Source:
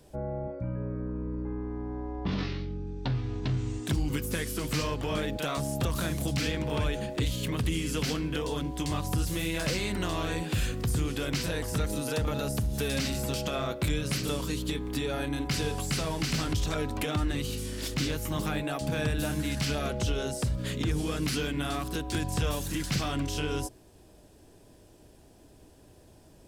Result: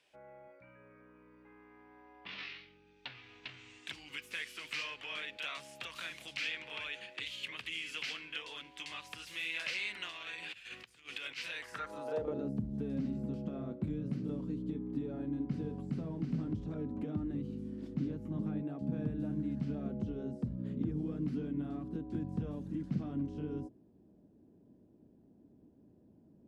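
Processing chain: 10.09–11.38 s: compressor with a negative ratio -33 dBFS, ratio -0.5; band-pass sweep 2.5 kHz -> 220 Hz, 11.58–12.56 s; trim +1 dB

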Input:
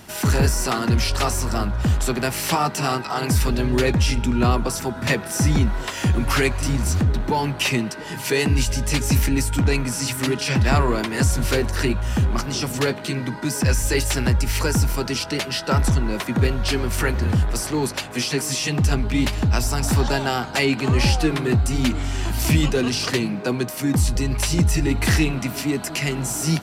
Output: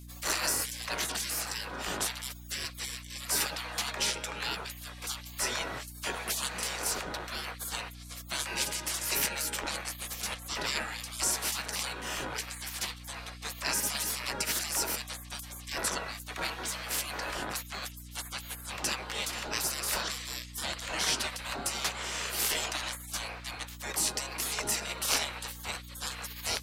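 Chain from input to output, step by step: spectral gate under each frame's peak -25 dB weak; hum 60 Hz, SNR 12 dB

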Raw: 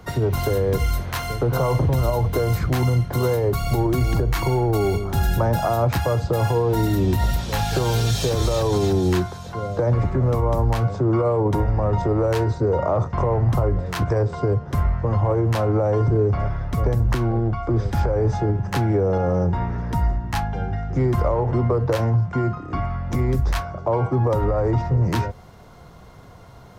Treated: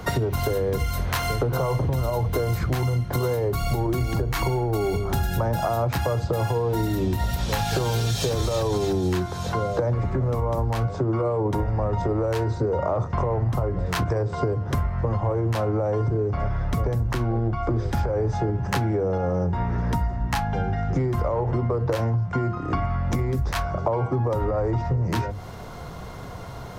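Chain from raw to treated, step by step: hum notches 50/100/150/200/250/300/350 Hz; compression 6:1, threshold -30 dBFS, peak gain reduction 14 dB; trim +8.5 dB

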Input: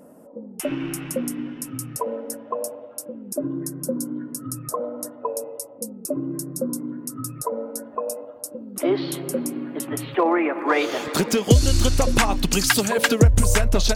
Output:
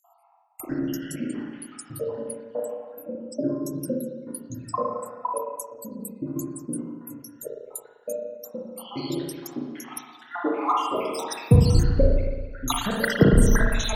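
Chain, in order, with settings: random holes in the spectrogram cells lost 80%; 11.83–12.68 s: low-pass 1.2 kHz 24 dB/octave; spring tank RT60 1.3 s, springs 35/55 ms, chirp 60 ms, DRR -2 dB

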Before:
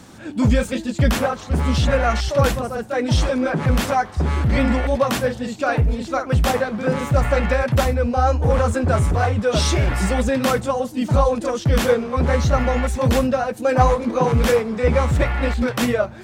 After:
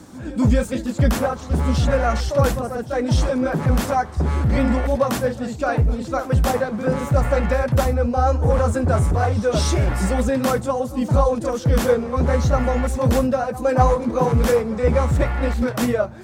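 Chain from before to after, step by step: peaking EQ 2.8 kHz -6.5 dB 1.6 oct; reverse echo 250 ms -19 dB

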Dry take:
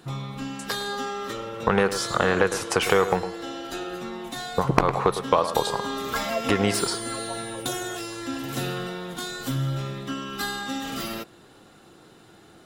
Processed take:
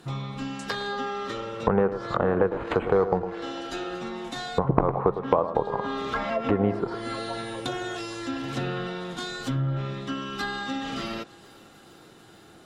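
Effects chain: thinning echo 450 ms, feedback 70%, level -24 dB; 2.50–3.34 s: sample-rate reducer 5.5 kHz, jitter 0%; low-pass that closes with the level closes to 900 Hz, closed at -20.5 dBFS

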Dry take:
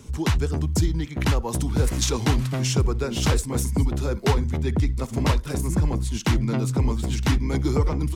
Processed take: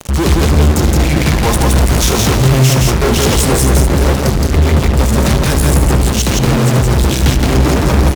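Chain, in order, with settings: 3.03–4.04 s: peaking EQ 430 Hz +6.5 dB 0.62 oct; 4.25–4.49 s: spectral replace 250–4400 Hz before; fuzz box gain 47 dB, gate -40 dBFS; vibrato 1.3 Hz 52 cents; loudspeakers at several distances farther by 26 m -12 dB, 58 m -2 dB; on a send at -15 dB: reverberation RT60 0.70 s, pre-delay 3 ms; on the sum: trim +1 dB

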